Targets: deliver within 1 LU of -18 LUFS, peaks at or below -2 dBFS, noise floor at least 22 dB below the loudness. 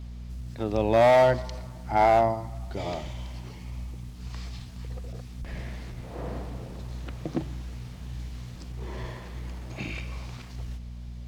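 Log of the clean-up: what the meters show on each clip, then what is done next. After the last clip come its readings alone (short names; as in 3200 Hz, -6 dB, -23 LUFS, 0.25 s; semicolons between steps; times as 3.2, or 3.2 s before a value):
clipped 0.8%; flat tops at -14.0 dBFS; hum 60 Hz; harmonics up to 240 Hz; hum level -37 dBFS; loudness -28.0 LUFS; peak -14.0 dBFS; loudness target -18.0 LUFS
-> clip repair -14 dBFS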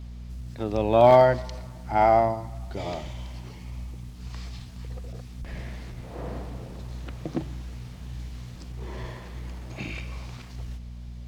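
clipped 0.0%; hum 60 Hz; harmonics up to 240 Hz; hum level -37 dBFS
-> de-hum 60 Hz, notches 4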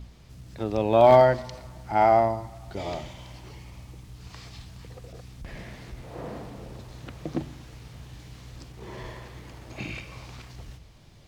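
hum none; loudness -23.0 LUFS; peak -5.0 dBFS; loudness target -18.0 LUFS
-> gain +5 dB; limiter -2 dBFS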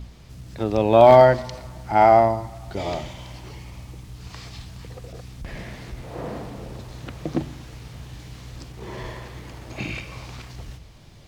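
loudness -18.5 LUFS; peak -2.0 dBFS; noise floor -44 dBFS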